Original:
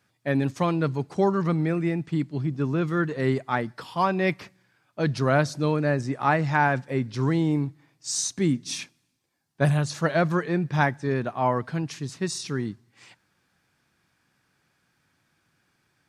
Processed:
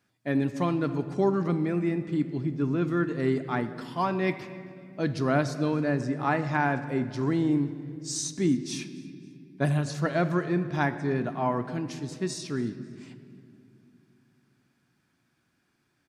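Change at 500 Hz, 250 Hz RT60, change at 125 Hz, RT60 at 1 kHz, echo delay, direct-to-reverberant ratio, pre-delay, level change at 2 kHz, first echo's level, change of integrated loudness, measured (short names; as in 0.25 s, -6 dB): -2.5 dB, 3.7 s, -4.0 dB, 2.0 s, 0.269 s, 9.0 dB, 3 ms, -4.5 dB, -22.0 dB, -2.5 dB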